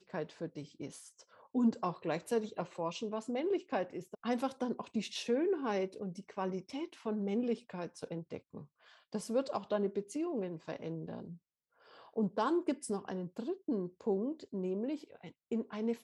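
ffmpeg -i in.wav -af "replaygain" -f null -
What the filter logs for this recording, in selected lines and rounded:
track_gain = +16.8 dB
track_peak = 0.071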